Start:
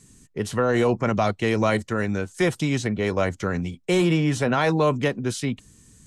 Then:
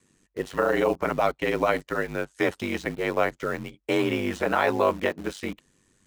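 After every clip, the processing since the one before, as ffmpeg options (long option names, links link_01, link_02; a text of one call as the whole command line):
ffmpeg -i in.wav -filter_complex "[0:a]bass=frequency=250:gain=-14,treble=frequency=4000:gain=-12,asplit=2[link_01][link_02];[link_02]acrusher=bits=5:mix=0:aa=0.000001,volume=-8dB[link_03];[link_01][link_03]amix=inputs=2:normalize=0,aeval=exprs='val(0)*sin(2*PI*48*n/s)':channel_layout=same" out.wav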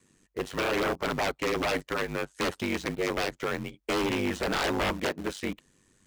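ffmpeg -i in.wav -af "aeval=exprs='0.0841*(abs(mod(val(0)/0.0841+3,4)-2)-1)':channel_layout=same" out.wav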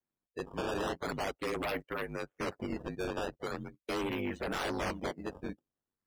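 ffmpeg -i in.wav -af "acrusher=samples=12:mix=1:aa=0.000001:lfo=1:lforange=19.2:lforate=0.41,afftdn=noise_reduction=23:noise_floor=-40,volume=-6.5dB" out.wav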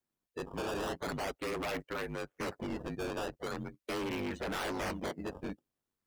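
ffmpeg -i in.wav -af "asoftclip=type=hard:threshold=-36dB,volume=2.5dB" out.wav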